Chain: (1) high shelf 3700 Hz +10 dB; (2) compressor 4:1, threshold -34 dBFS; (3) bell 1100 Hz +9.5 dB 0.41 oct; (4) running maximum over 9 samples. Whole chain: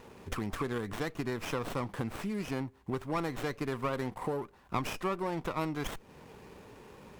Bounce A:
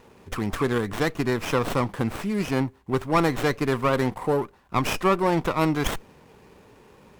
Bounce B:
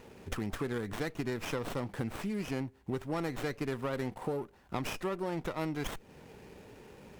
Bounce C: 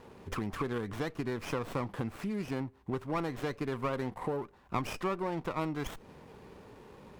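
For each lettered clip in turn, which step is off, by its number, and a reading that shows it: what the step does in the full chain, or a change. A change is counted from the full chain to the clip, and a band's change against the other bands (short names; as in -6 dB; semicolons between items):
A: 2, mean gain reduction 8.0 dB; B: 3, 1 kHz band -3.5 dB; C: 1, 8 kHz band -3.5 dB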